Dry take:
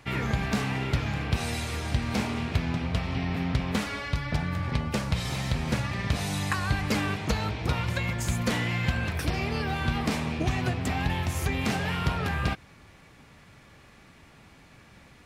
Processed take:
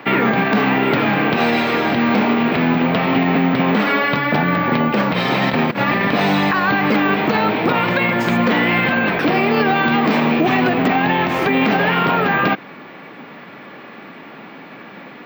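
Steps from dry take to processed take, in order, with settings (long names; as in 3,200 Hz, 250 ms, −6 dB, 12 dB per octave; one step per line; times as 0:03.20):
high-pass filter 210 Hz 24 dB per octave
0:05.38–0:06.01: compressor whose output falls as the input rises −36 dBFS, ratio −0.5
0:09.44–0:10.75: high-shelf EQ 8,000 Hz +11 dB
bad sample-rate conversion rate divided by 2×, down filtered, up zero stuff
high-frequency loss of the air 360 metres
boost into a limiter +27 dB
level −6 dB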